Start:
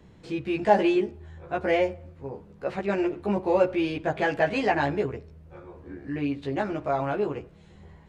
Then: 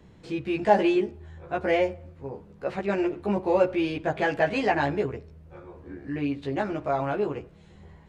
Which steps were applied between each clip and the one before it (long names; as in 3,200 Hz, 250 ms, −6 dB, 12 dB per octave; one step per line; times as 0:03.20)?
no processing that can be heard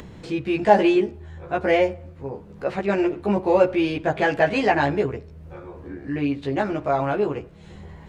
upward compression, threshold −38 dBFS
level +4.5 dB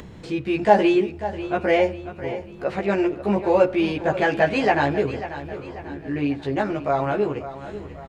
repeating echo 542 ms, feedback 46%, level −13 dB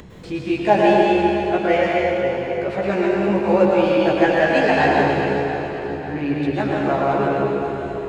dense smooth reverb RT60 2.9 s, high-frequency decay 0.9×, pre-delay 95 ms, DRR −3.5 dB
level −1 dB